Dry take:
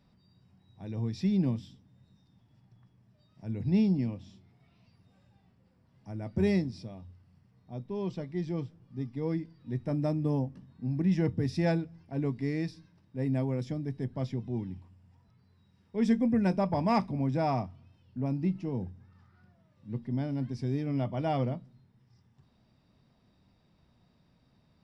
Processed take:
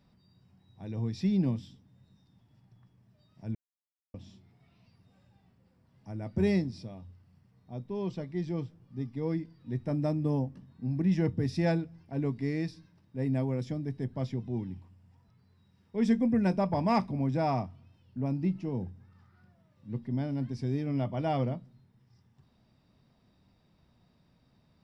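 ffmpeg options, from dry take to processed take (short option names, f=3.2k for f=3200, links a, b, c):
-filter_complex "[0:a]asplit=3[a][b][c];[a]atrim=end=3.55,asetpts=PTS-STARTPTS,afade=t=out:st=3.546:d=0.004:c=hsin[d];[b]atrim=start=3.55:end=4.14,asetpts=PTS-STARTPTS,volume=0[e];[c]atrim=start=4.14,asetpts=PTS-STARTPTS,afade=t=in:d=0.004:c=hsin[f];[d][e][f]concat=n=3:v=0:a=1"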